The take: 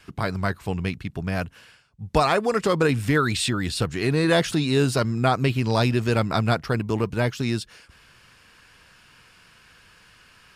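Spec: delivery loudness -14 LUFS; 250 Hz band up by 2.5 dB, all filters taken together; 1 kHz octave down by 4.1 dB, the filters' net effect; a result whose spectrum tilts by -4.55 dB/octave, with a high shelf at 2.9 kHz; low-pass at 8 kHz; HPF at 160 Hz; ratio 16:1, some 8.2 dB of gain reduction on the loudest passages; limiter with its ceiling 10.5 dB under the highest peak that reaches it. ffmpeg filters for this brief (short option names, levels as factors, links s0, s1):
-af "highpass=160,lowpass=8000,equalizer=f=250:t=o:g=4.5,equalizer=f=1000:t=o:g=-7.5,highshelf=f=2900:g=7,acompressor=threshold=0.0708:ratio=16,volume=7.94,alimiter=limit=0.668:level=0:latency=1"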